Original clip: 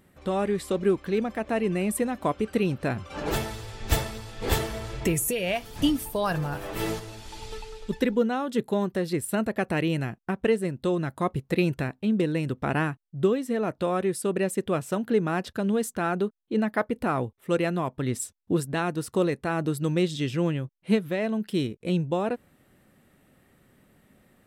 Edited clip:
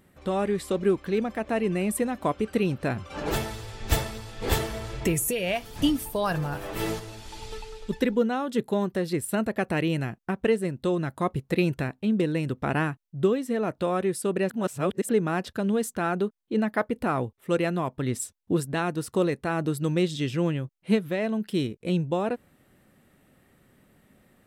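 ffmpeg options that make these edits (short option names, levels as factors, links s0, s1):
-filter_complex "[0:a]asplit=3[s0][s1][s2];[s0]atrim=end=14.502[s3];[s1]atrim=start=14.498:end=15.092,asetpts=PTS-STARTPTS,areverse[s4];[s2]atrim=start=15.088[s5];[s3][s4]acrossfade=d=0.004:c1=hsin:c2=hsin[s6];[s6][s5]acrossfade=d=0.004:c1=hsin:c2=hsin"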